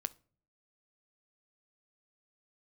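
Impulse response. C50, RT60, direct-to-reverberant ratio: 22.5 dB, 0.45 s, 14.0 dB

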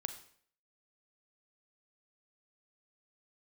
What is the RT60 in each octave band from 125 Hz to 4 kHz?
0.55, 0.60, 0.60, 0.55, 0.55, 0.50 seconds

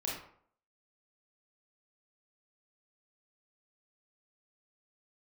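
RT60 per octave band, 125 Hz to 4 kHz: 0.55, 0.55, 0.60, 0.60, 0.45, 0.35 seconds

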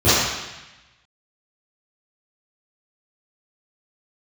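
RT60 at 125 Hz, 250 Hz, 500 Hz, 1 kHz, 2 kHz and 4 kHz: 1.2, 1.0, 0.95, 1.1, 1.2, 1.1 seconds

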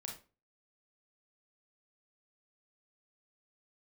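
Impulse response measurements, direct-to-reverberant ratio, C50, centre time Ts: 0.0 dB, 6.0 dB, 26 ms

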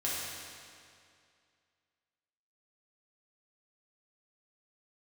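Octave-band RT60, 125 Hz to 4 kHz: 2.3, 2.3, 2.3, 2.3, 2.2, 2.0 seconds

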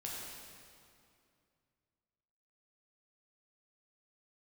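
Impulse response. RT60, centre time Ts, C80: 2.5 s, 130 ms, 0.0 dB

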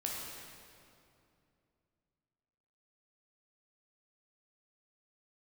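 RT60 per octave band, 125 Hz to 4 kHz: 3.4, 3.2, 2.8, 2.5, 2.1, 1.9 seconds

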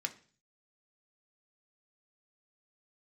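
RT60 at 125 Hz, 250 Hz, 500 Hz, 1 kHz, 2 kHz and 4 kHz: 0.75, 0.55, 0.45, 0.40, 0.45, 0.50 seconds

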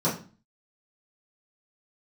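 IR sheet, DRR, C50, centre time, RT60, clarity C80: −10.5 dB, 8.0 dB, 27 ms, 0.35 s, 14.0 dB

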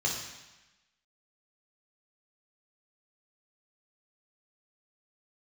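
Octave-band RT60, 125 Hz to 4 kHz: 1.0, 1.0, 0.95, 1.1, 1.2, 1.1 seconds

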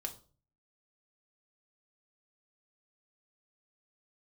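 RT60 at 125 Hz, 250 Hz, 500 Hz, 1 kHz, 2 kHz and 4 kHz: 0.65, 0.50, 0.45, 0.35, 0.30, 0.30 seconds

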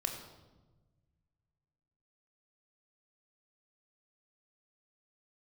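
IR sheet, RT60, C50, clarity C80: 1.2 s, 6.0 dB, 7.5 dB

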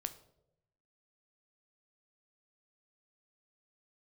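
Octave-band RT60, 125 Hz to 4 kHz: 1.2, 0.95, 1.0, 0.65, 0.50, 0.50 seconds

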